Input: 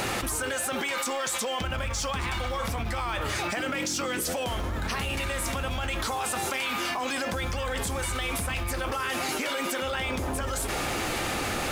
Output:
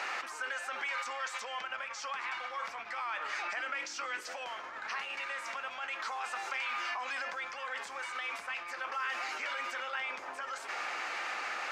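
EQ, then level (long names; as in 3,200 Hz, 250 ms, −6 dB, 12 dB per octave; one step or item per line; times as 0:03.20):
high-pass filter 1,200 Hz 12 dB per octave
high-frequency loss of the air 180 metres
parametric band 3,500 Hz −8.5 dB 0.66 octaves
0.0 dB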